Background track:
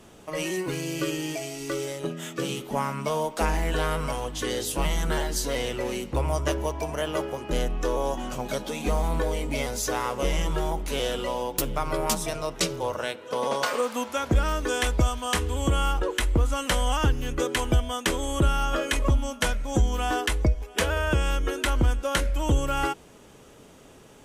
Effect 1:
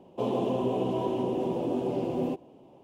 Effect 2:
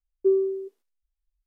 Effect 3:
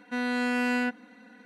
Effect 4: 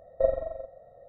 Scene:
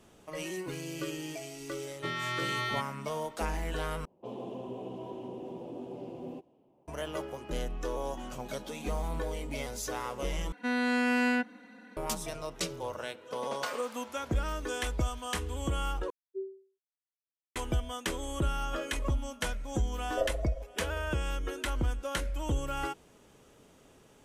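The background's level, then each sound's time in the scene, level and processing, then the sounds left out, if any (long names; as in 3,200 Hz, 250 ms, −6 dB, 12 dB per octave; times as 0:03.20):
background track −8.5 dB
0:01.91: mix in 3 −4 dB + ring modulation 1,600 Hz
0:04.05: overwrite with 1 −12.5 dB + low-pass that shuts in the quiet parts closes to 1,600 Hz, open at −28.5 dBFS
0:10.52: overwrite with 3 −0.5 dB
0:16.10: overwrite with 2 −17.5 dB + every bin expanded away from the loudest bin 2.5 to 1
0:19.97: mix in 4 −7 dB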